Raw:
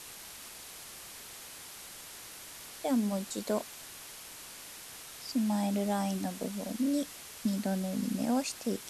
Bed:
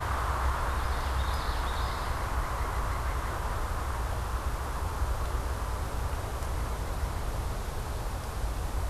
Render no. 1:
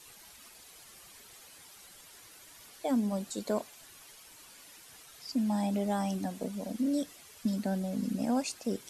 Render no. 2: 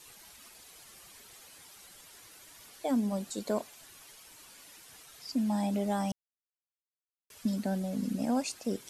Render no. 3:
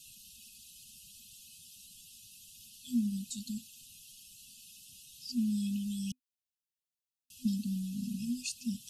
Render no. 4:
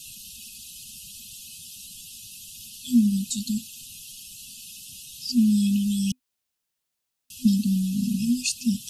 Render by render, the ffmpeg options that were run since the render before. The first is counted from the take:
ffmpeg -i in.wav -af "afftdn=noise_reduction=10:noise_floor=-48" out.wav
ffmpeg -i in.wav -filter_complex "[0:a]asplit=3[link_01][link_02][link_03];[link_01]atrim=end=6.12,asetpts=PTS-STARTPTS,afade=type=out:start_time=6.116:duration=0.004:curve=hsin[link_04];[link_02]atrim=start=6.12:end=7.3,asetpts=PTS-STARTPTS,volume=0[link_05];[link_03]atrim=start=7.3,asetpts=PTS-STARTPTS,afade=type=in:duration=0.004:curve=hsin[link_06];[link_04][link_05][link_06]concat=n=3:v=0:a=1" out.wav
ffmpeg -i in.wav -af "afftfilt=real='re*(1-between(b*sr/4096,250,2500))':imag='im*(1-between(b*sr/4096,250,2500))':win_size=4096:overlap=0.75,adynamicequalizer=threshold=0.00631:dfrequency=220:dqfactor=1.1:tfrequency=220:tqfactor=1.1:attack=5:release=100:ratio=0.375:range=2:mode=cutabove:tftype=bell" out.wav
ffmpeg -i in.wav -af "volume=12dB" out.wav

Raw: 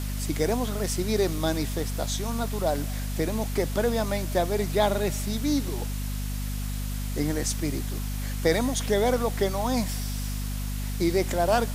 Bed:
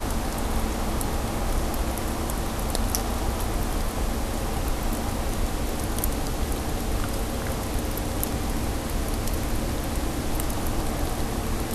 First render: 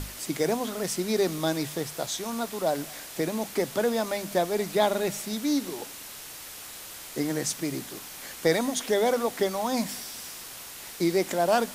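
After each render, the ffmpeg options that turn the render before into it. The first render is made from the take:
ffmpeg -i in.wav -af "bandreject=frequency=50:width_type=h:width=6,bandreject=frequency=100:width_type=h:width=6,bandreject=frequency=150:width_type=h:width=6,bandreject=frequency=200:width_type=h:width=6,bandreject=frequency=250:width_type=h:width=6" out.wav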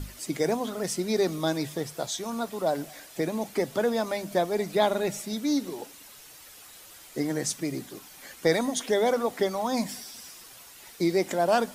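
ffmpeg -i in.wav -af "afftdn=noise_reduction=9:noise_floor=-42" out.wav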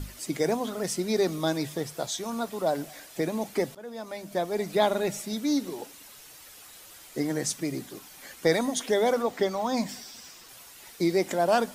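ffmpeg -i in.wav -filter_complex "[0:a]asettb=1/sr,asplit=3[link_01][link_02][link_03];[link_01]atrim=end=9.224[link_04];[link_02]atrim=start=9.22:end=10.49,asetpts=PTS-STARTPTS,afade=type=in:duration=0.004:curve=qsin,afade=type=out:start_time=1.266:duration=0.004:curve=qsin,equalizer=frequency=11000:width_type=o:width=0.44:gain=-12[link_05];[link_03]atrim=start=10.486[link_06];[link_04][link_05]acrossfade=duration=0.004:curve1=hsin:curve2=qsin[link_07];[link_07][link_06]acrossfade=duration=0.004:curve1=qsin:curve2=hsin,asplit=2[link_08][link_09];[link_08]atrim=end=3.75,asetpts=PTS-STARTPTS,afade=type=out:start_time=3.746:duration=0.004:curve=hsin:silence=0.0668344[link_10];[link_09]atrim=start=3.75,asetpts=PTS-STARTPTS,afade=type=in:duration=0.99:silence=0.0668344[link_11];[link_10][link_11]concat=n=2:v=0:a=1" out.wav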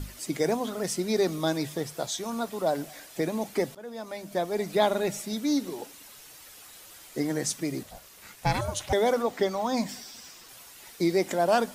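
ffmpeg -i in.wav -filter_complex "[0:a]asettb=1/sr,asplit=3[link_01][link_02][link_03];[link_01]atrim=end=7.834[link_04];[link_02]atrim=start=7.83:end=8.93,asetpts=PTS-STARTPTS,afade=type=in:duration=0.004:curve=qsin,afade=type=out:start_time=1.096:duration=0.004:curve=qsin,aeval=exprs='val(0)*sin(2*PI*350*n/s)':channel_layout=same[link_05];[link_03]atrim=start=8.926[link_06];[link_04][link_05]acrossfade=duration=0.004:curve1=hsin:curve2=qsin[link_07];[link_07][link_06]acrossfade=duration=0.004:curve1=qsin:curve2=hsin" out.wav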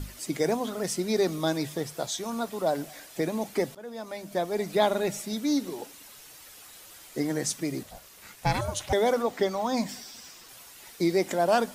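ffmpeg -i in.wav -af anull out.wav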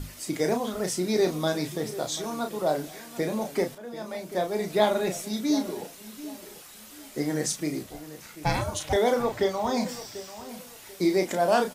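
ffmpeg -i in.wav -filter_complex "[0:a]asplit=2[link_01][link_02];[link_02]adelay=33,volume=-6dB[link_03];[link_01][link_03]amix=inputs=2:normalize=0,asplit=2[link_04][link_05];[link_05]adelay=740,lowpass=frequency=2000:poles=1,volume=-14.5dB,asplit=2[link_06][link_07];[link_07]adelay=740,lowpass=frequency=2000:poles=1,volume=0.3,asplit=2[link_08][link_09];[link_09]adelay=740,lowpass=frequency=2000:poles=1,volume=0.3[link_10];[link_04][link_06][link_08][link_10]amix=inputs=4:normalize=0" out.wav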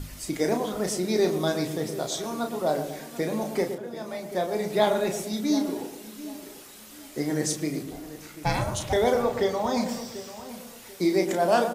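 ffmpeg -i in.wav -filter_complex "[0:a]asplit=2[link_01][link_02];[link_02]adelay=116,lowpass=frequency=990:poles=1,volume=-7dB,asplit=2[link_03][link_04];[link_04]adelay=116,lowpass=frequency=990:poles=1,volume=0.5,asplit=2[link_05][link_06];[link_06]adelay=116,lowpass=frequency=990:poles=1,volume=0.5,asplit=2[link_07][link_08];[link_08]adelay=116,lowpass=frequency=990:poles=1,volume=0.5,asplit=2[link_09][link_10];[link_10]adelay=116,lowpass=frequency=990:poles=1,volume=0.5,asplit=2[link_11][link_12];[link_12]adelay=116,lowpass=frequency=990:poles=1,volume=0.5[link_13];[link_01][link_03][link_05][link_07][link_09][link_11][link_13]amix=inputs=7:normalize=0" out.wav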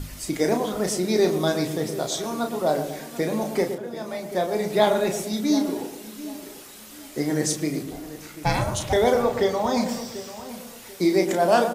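ffmpeg -i in.wav -af "volume=3dB" out.wav

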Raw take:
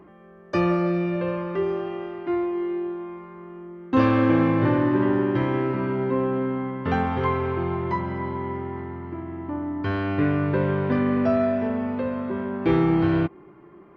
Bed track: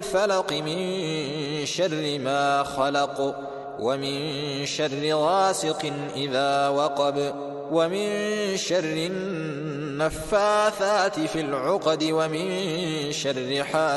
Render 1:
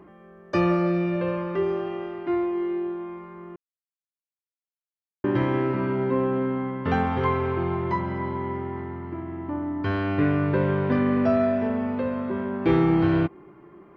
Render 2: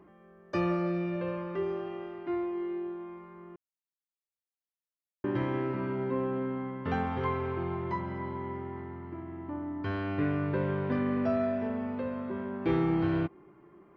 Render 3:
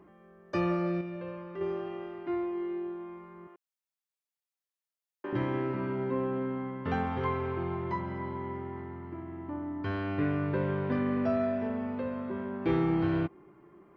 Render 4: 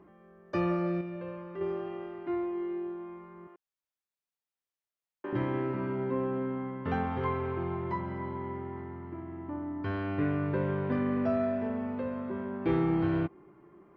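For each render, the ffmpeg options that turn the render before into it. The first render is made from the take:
ffmpeg -i in.wav -filter_complex "[0:a]asplit=3[link_01][link_02][link_03];[link_01]atrim=end=3.56,asetpts=PTS-STARTPTS,afade=type=out:start_time=3.556:duration=0.004:curve=hsin[link_04];[link_02]atrim=start=3.56:end=5.24,asetpts=PTS-STARTPTS,volume=0[link_05];[link_03]atrim=start=5.24,asetpts=PTS-STARTPTS,afade=type=in:duration=0.004:curve=hsin[link_06];[link_04][link_05][link_06]concat=n=3:v=0:a=1" out.wav
ffmpeg -i in.wav -af "volume=-7.5dB" out.wav
ffmpeg -i in.wav -filter_complex "[0:a]asettb=1/sr,asplit=3[link_01][link_02][link_03];[link_01]atrim=end=3.474[link_04];[link_02]atrim=start=3.47:end=5.33,asetpts=PTS-STARTPTS,afade=type=in:duration=0.004:curve=qsin,afade=type=out:start_time=1.856:duration=0.004:curve=qsin,highpass=480[link_05];[link_03]atrim=start=5.326[link_06];[link_04][link_05]acrossfade=duration=0.004:curve1=hsin:curve2=qsin[link_07];[link_07][link_06]acrossfade=duration=0.004:curve1=qsin:curve2=hsin,asplit=3[link_08][link_09][link_10];[link_08]atrim=end=1.012[link_11];[link_09]atrim=start=1.008:end=1.612,asetpts=PTS-STARTPTS,volume=-6dB[link_12];[link_10]atrim=start=1.608[link_13];[link_11][link_12]acrossfade=duration=0.004:curve1=hsin:curve2=hsin[link_14];[link_14][link_13]acrossfade=duration=0.004:curve1=hsin:curve2=hsin" out.wav
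ffmpeg -i in.wav -af "highshelf=frequency=4100:gain=-7.5" out.wav

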